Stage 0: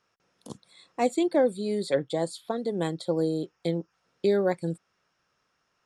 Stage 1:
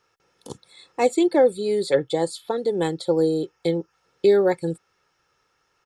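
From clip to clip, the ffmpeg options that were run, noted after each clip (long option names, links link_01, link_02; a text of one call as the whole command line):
ffmpeg -i in.wav -af "aecho=1:1:2.3:0.48,volume=4.5dB" out.wav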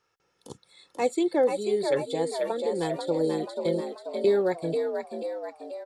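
ffmpeg -i in.wav -filter_complex "[0:a]asplit=8[link_01][link_02][link_03][link_04][link_05][link_06][link_07][link_08];[link_02]adelay=486,afreqshift=57,volume=-5.5dB[link_09];[link_03]adelay=972,afreqshift=114,volume=-11dB[link_10];[link_04]adelay=1458,afreqshift=171,volume=-16.5dB[link_11];[link_05]adelay=1944,afreqshift=228,volume=-22dB[link_12];[link_06]adelay=2430,afreqshift=285,volume=-27.6dB[link_13];[link_07]adelay=2916,afreqshift=342,volume=-33.1dB[link_14];[link_08]adelay=3402,afreqshift=399,volume=-38.6dB[link_15];[link_01][link_09][link_10][link_11][link_12][link_13][link_14][link_15]amix=inputs=8:normalize=0,volume=-6dB" out.wav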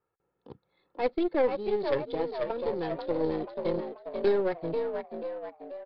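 ffmpeg -i in.wav -af "aeval=exprs='0.237*(cos(1*acos(clip(val(0)/0.237,-1,1)))-cos(1*PI/2))+0.0473*(cos(2*acos(clip(val(0)/0.237,-1,1)))-cos(2*PI/2))+0.0422*(cos(4*acos(clip(val(0)/0.237,-1,1)))-cos(4*PI/2))':channel_layout=same,adynamicsmooth=sensitivity=6.5:basefreq=1100,aresample=11025,aresample=44100,volume=-3dB" out.wav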